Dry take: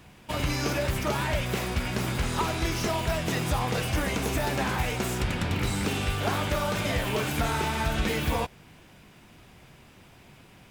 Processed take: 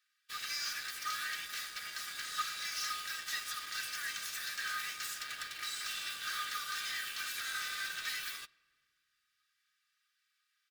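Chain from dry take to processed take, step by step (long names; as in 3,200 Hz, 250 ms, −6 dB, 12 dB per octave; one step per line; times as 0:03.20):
Chebyshev high-pass with heavy ripple 1,200 Hz, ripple 9 dB
high-shelf EQ 11,000 Hz +6.5 dB
comb filter 2.6 ms, depth 60%
in parallel at −10 dB: log-companded quantiser 2 bits
on the sum: convolution reverb RT60 2.0 s, pre-delay 6 ms, DRR 12 dB
expander for the loud parts 1.5 to 1, over −54 dBFS
level −4.5 dB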